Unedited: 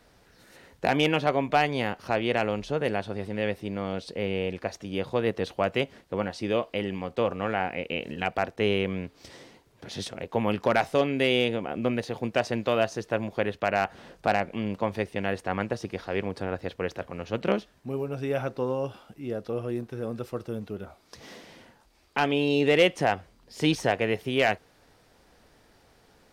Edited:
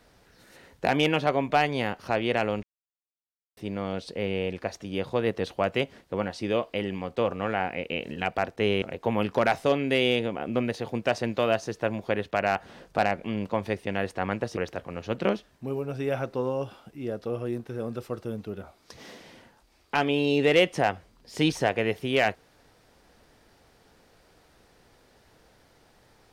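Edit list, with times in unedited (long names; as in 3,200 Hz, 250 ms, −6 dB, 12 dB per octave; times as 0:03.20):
0:02.63–0:03.57: silence
0:08.82–0:10.11: remove
0:15.86–0:16.80: remove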